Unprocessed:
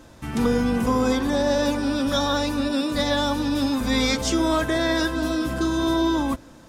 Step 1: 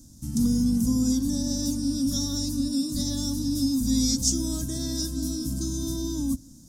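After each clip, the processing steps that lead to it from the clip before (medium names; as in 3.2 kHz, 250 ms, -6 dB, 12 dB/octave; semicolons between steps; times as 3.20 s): FFT filter 270 Hz 0 dB, 390 Hz -20 dB, 2.4 kHz -29 dB, 5.7 kHz +6 dB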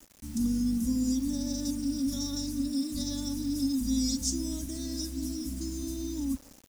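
comb 3.5 ms, depth 71%; bit crusher 7-bit; trim -8.5 dB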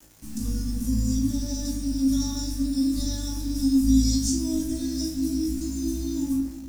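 flutter echo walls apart 3.2 m, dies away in 0.26 s; on a send at -2.5 dB: reverberation RT60 0.75 s, pre-delay 6 ms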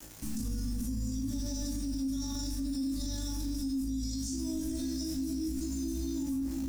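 compression, threshold -29 dBFS, peak gain reduction 14 dB; peak limiter -32 dBFS, peak gain reduction 10.5 dB; trim +5 dB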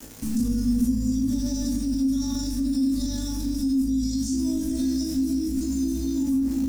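small resonant body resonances 240/450 Hz, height 13 dB, ringing for 100 ms; trim +5 dB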